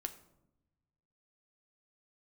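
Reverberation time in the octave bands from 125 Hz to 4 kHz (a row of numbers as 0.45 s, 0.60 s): 1.8 s, 1.4 s, 1.0 s, 0.75 s, 0.55 s, 0.45 s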